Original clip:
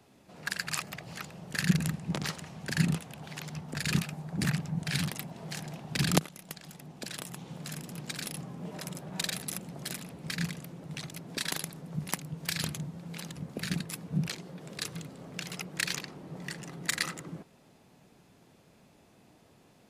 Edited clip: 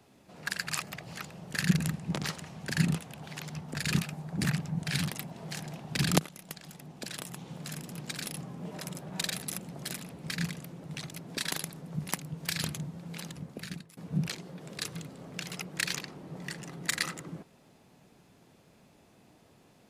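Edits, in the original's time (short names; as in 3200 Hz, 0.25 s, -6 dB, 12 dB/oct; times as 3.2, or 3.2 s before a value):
13.27–13.97 fade out, to -23 dB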